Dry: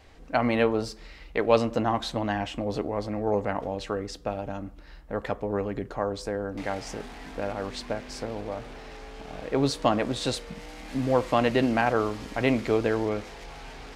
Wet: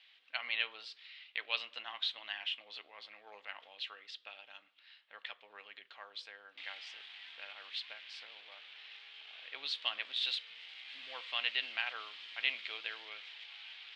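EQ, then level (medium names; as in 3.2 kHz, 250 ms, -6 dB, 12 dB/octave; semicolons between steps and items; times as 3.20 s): ladder band-pass 3.8 kHz, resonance 50%; distance through air 480 m; treble shelf 3.1 kHz +9.5 dB; +14.0 dB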